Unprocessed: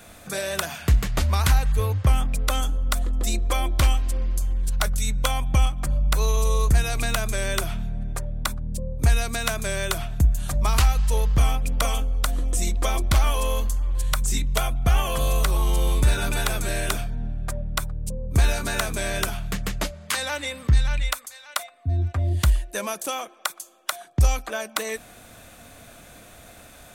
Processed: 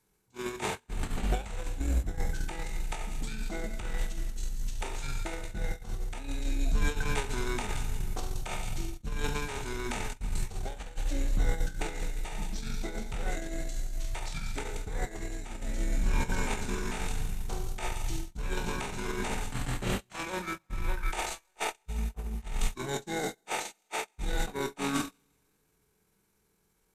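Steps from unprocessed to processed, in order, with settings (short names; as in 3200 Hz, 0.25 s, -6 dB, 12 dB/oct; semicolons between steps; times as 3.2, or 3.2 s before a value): spectral trails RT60 0.62 s; thirty-one-band EQ 315 Hz +9 dB, 1600 Hz -3 dB, 8000 Hz -11 dB, 12500 Hz +3 dB; on a send: thin delay 0.18 s, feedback 38%, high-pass 5400 Hz, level -8 dB; on the sum: added noise violet -46 dBFS; limiter -14.5 dBFS, peak gain reduction 8.5 dB; high shelf 7400 Hz -3.5 dB; notch 1100 Hz, Q 19; reverse; compressor 16:1, threshold -31 dBFS, peak gain reduction 14 dB; reverse; Schroeder reverb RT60 2.5 s, combs from 28 ms, DRR 8.5 dB; gate -32 dBFS, range -37 dB; pitch shift -8 st; gain +8 dB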